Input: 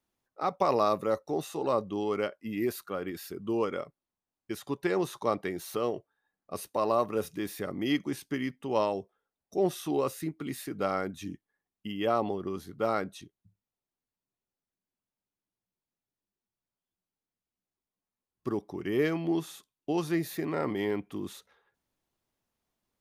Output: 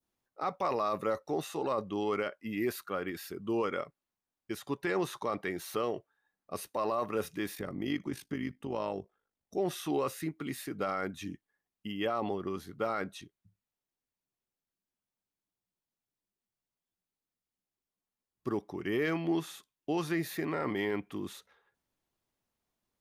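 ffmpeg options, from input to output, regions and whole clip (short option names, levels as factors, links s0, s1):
-filter_complex "[0:a]asettb=1/sr,asplit=3[s0][s1][s2];[s0]atrim=end=7.554[s3];[s1]atrim=start=7.55:end=9.56,asetpts=PTS-STARTPTS,afade=t=in:d=0.004:c=qsin,afade=t=out:st=2.006:d=0.004:c=qsin,tremolo=f=51:d=0.667,lowshelf=f=370:g=7.5,acompressor=threshold=0.0178:ratio=1.5:attack=3.2:release=140:knee=1:detection=peak[s4];[s2]atrim=start=9.556[s5];[s3][s4]acrossfade=d=0.004:c1=hsin:c2=qsin[s6];[s6][s5]acrossfade=d=0.004:c1=qsin:c2=hsin,adynamicequalizer=threshold=0.00631:dfrequency=1800:dqfactor=0.72:tfrequency=1800:tqfactor=0.72:attack=5:release=100:ratio=0.375:range=3:mode=boostabove:tftype=bell,alimiter=limit=0.1:level=0:latency=1:release=12,volume=0.794"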